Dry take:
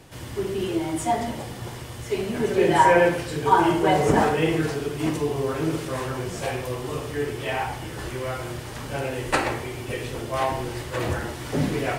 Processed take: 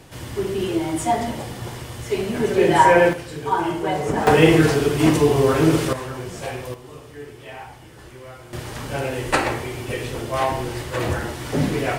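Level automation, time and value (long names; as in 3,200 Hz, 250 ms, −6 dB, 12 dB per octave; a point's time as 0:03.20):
+3 dB
from 0:03.13 −3.5 dB
from 0:04.27 +9 dB
from 0:05.93 −1.5 dB
from 0:06.74 −10 dB
from 0:08.53 +3 dB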